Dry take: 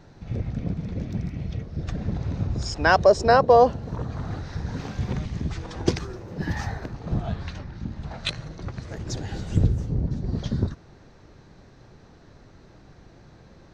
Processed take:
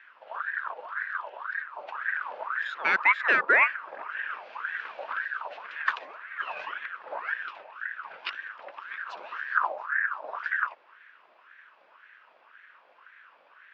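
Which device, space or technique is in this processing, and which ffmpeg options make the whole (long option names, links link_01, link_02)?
voice changer toy: -af "aeval=exprs='val(0)*sin(2*PI*1200*n/s+1200*0.45/1.9*sin(2*PI*1.9*n/s))':channel_layout=same,highpass=550,equalizer=frequency=780:width_type=q:width=4:gain=-8,equalizer=frequency=1600:width_type=q:width=4:gain=5,equalizer=frequency=2600:width_type=q:width=4:gain=6,lowpass=frequency=3700:width=0.5412,lowpass=frequency=3700:width=1.3066,volume=-4dB"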